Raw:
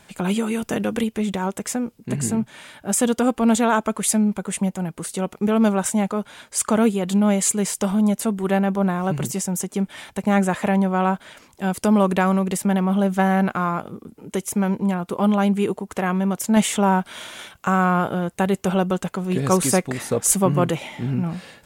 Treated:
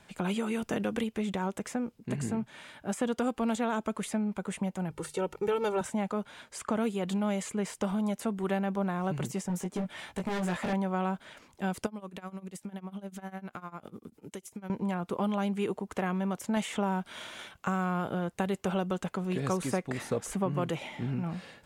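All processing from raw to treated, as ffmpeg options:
-filter_complex "[0:a]asettb=1/sr,asplit=3[s0][s1][s2];[s0]atrim=end=4.904[s3];[s1]atrim=start=4.9:end=5.81,asetpts=PTS-STARTPTS,afade=t=in:d=0.004:c=qsin,afade=t=out:st=0.906:d=0.004:c=qsin,bandreject=f=50:t=h:w=6,bandreject=f=100:t=h:w=6,bandreject=f=150:t=h:w=6,bandreject=f=200:t=h:w=6,bandreject=f=250:t=h:w=6,aecho=1:1:2.2:0.87,atrim=end_sample=40131[s4];[s2]atrim=start=5.806[s5];[s3][s4]acrossfade=d=0.004:c1=hsin:c2=qsin[s6];[s6][s5]acrossfade=d=0.004:c1=qsin:c2=hsin,asettb=1/sr,asplit=3[s7][s8][s9];[s7]atrim=end=9.484[s10];[s8]atrim=start=9.48:end=10.73,asetpts=PTS-STARTPTS,afade=t=in:d=0.004:c=qsin,afade=t=out:st=1.246:d=0.004:c=qsin,asoftclip=type=hard:threshold=0.0891,asplit=2[s11][s12];[s12]adelay=17,volume=0.668[s13];[s11][s13]amix=inputs=2:normalize=0,atrim=end_sample=55125[s14];[s9]atrim=start=10.726[s15];[s10][s14]acrossfade=d=0.004:c1=hsin:c2=qsin[s16];[s16][s15]acrossfade=d=0.004:c1=qsin:c2=hsin,asettb=1/sr,asplit=3[s17][s18][s19];[s17]atrim=end=11.864[s20];[s18]atrim=start=11.86:end=14.7,asetpts=PTS-STARTPTS,afade=t=in:d=0.004:c=qsin,afade=t=out:st=2.836:d=0.004:c=qsin,highshelf=f=3300:g=9,acompressor=threshold=0.0316:ratio=5:attack=3.2:release=140:knee=1:detection=peak,tremolo=f=10:d=0.9[s21];[s19]atrim=start=14.696[s22];[s20][s21]acrossfade=d=0.004:c1=hsin:c2=qsin[s23];[s23][s22]acrossfade=d=0.004:c1=qsin:c2=hsin,highshelf=f=7400:g=-9,acrossover=split=490|3000[s24][s25][s26];[s24]acompressor=threshold=0.0631:ratio=4[s27];[s25]acompressor=threshold=0.0501:ratio=4[s28];[s26]acompressor=threshold=0.0141:ratio=4[s29];[s27][s28][s29]amix=inputs=3:normalize=0,volume=0.501"

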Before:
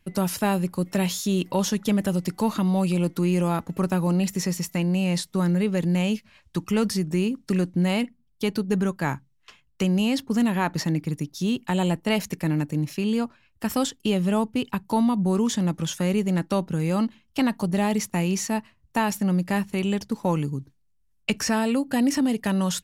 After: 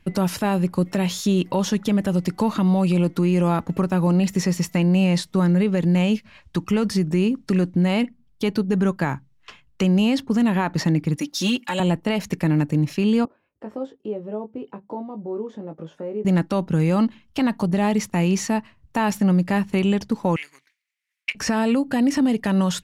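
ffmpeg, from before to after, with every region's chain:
-filter_complex "[0:a]asettb=1/sr,asplit=3[s0][s1][s2];[s0]atrim=end=11.164[s3];[s1]atrim=start=11.16:end=11.8,asetpts=PTS-STARTPTS,afade=t=in:d=0.004:c=qsin,afade=t=out:st=0.636:d=0.004:c=qsin,highpass=f=150:p=1,tiltshelf=f=720:g=-5.5,aecho=1:1:3.6:0.9,atrim=end_sample=28224[s4];[s2]atrim=start=11.796[s5];[s3][s4]acrossfade=d=0.004:c1=hsin:c2=qsin[s6];[s6][s5]acrossfade=d=0.004:c1=qsin:c2=hsin,asettb=1/sr,asplit=3[s7][s8][s9];[s7]atrim=end=13.254[s10];[s8]atrim=start=13.25:end=16.25,asetpts=PTS-STARTPTS,afade=t=in:d=0.004:c=qsin,afade=t=out:st=2.996:d=0.004:c=qsin,acompressor=threshold=0.0158:ratio=2:attack=3.2:release=140:knee=1:detection=peak,bandpass=f=470:t=q:w=1.9,asplit=2[s11][s12];[s12]adelay=19,volume=0.501[s13];[s11][s13]amix=inputs=2:normalize=0,atrim=end_sample=132300[s14];[s9]atrim=start=16.246[s15];[s10][s14]acrossfade=d=0.004:c1=hsin:c2=qsin[s16];[s16][s15]acrossfade=d=0.004:c1=qsin:c2=hsin,asettb=1/sr,asplit=3[s17][s18][s19];[s17]atrim=end=20.364[s20];[s18]atrim=start=20.36:end=21.35,asetpts=PTS-STARTPTS,afade=t=in:d=0.004:c=qsin,afade=t=out:st=0.986:d=0.004:c=qsin,aeval=exprs='clip(val(0),-1,0.0266)':c=same,highpass=f=2100:t=q:w=5.2[s21];[s19]atrim=start=21.346[s22];[s20][s21]acrossfade=d=0.004:c1=hsin:c2=qsin[s23];[s23][s22]acrossfade=d=0.004:c1=qsin:c2=hsin,lowpass=f=3600:p=1,alimiter=limit=0.1:level=0:latency=1:release=263,volume=2.51"

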